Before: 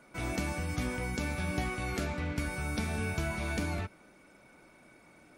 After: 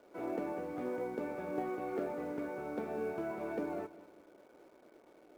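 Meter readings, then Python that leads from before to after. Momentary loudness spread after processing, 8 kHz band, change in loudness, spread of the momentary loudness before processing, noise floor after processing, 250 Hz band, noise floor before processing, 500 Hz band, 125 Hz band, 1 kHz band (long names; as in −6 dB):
3 LU, below −20 dB, −4.5 dB, 2 LU, −62 dBFS, −3.0 dB, −60 dBFS, +3.0 dB, −19.0 dB, −2.5 dB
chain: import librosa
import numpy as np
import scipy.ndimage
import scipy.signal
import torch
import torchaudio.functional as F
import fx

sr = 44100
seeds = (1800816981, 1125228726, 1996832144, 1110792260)

p1 = fx.ladder_bandpass(x, sr, hz=490.0, resonance_pct=40)
p2 = fx.quant_companded(p1, sr, bits=6)
p3 = p1 + (p2 * librosa.db_to_amplitude(-9.0))
p4 = fx.echo_feedback(p3, sr, ms=200, feedback_pct=49, wet_db=-18)
y = p4 * librosa.db_to_amplitude(9.0)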